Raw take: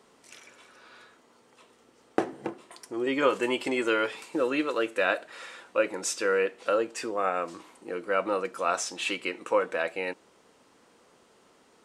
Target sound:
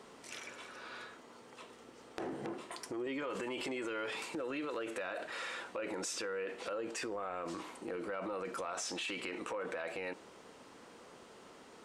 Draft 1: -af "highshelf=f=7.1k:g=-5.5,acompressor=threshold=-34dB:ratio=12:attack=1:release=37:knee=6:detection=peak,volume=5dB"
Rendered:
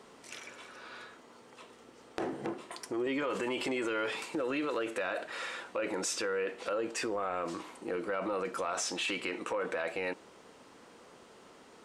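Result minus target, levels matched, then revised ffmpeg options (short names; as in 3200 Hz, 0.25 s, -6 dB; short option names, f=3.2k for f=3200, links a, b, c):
compressor: peak gain reduction -6 dB
-af "highshelf=f=7.1k:g=-5.5,acompressor=threshold=-40.5dB:ratio=12:attack=1:release=37:knee=6:detection=peak,volume=5dB"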